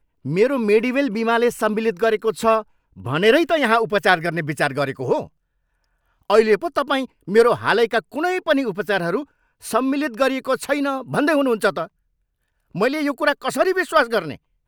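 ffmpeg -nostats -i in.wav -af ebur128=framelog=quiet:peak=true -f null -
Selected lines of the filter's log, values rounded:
Integrated loudness:
  I:         -19.6 LUFS
  Threshold: -30.0 LUFS
Loudness range:
  LRA:         2.8 LU
  Threshold: -40.4 LUFS
  LRA low:   -21.9 LUFS
  LRA high:  -19.0 LUFS
True peak:
  Peak:       -1.4 dBFS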